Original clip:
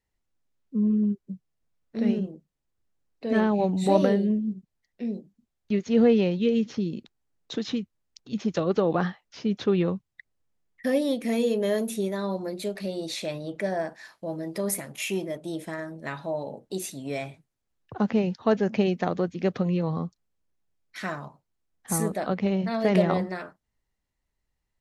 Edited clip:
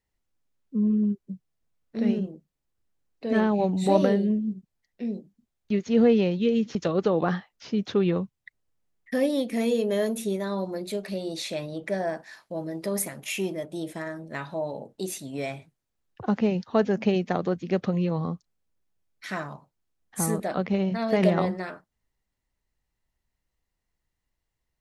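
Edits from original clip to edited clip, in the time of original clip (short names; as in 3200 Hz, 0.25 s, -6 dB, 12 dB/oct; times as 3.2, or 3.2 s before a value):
6.75–8.47 cut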